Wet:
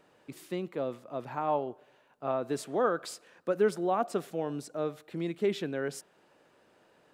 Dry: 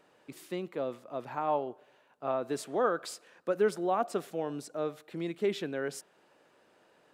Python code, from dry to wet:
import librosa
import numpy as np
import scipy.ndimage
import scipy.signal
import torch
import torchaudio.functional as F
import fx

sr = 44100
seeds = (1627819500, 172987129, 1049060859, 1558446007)

y = fx.low_shelf(x, sr, hz=170.0, db=7.0)